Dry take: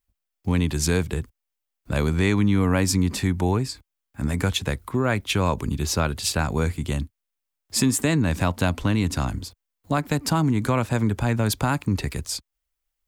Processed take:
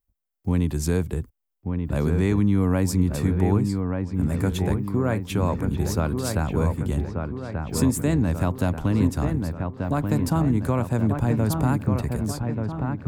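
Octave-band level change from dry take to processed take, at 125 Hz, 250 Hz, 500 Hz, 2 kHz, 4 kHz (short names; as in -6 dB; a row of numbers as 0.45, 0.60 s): +1.5, +1.0, 0.0, -6.5, -10.0 dB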